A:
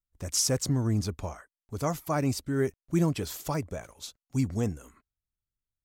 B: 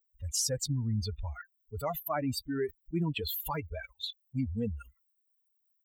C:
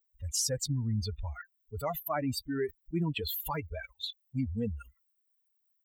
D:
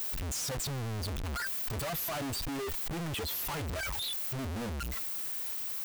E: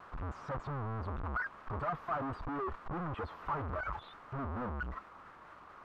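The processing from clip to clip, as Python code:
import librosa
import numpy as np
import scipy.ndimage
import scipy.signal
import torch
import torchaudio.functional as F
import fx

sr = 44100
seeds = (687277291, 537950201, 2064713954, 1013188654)

y1 = fx.bin_expand(x, sr, power=3.0)
y1 = fx.env_flatten(y1, sr, amount_pct=70)
y1 = F.gain(torch.from_numpy(y1), -4.0).numpy()
y2 = fx.peak_eq(y1, sr, hz=1900.0, db=3.0, octaves=0.25)
y3 = np.sign(y2) * np.sqrt(np.mean(np.square(y2)))
y3 = fx.rider(y3, sr, range_db=10, speed_s=2.0)
y4 = fx.lowpass_res(y3, sr, hz=1200.0, q=3.5)
y4 = fx.vibrato(y4, sr, rate_hz=4.4, depth_cents=84.0)
y4 = F.gain(torch.from_numpy(y4), -3.5).numpy()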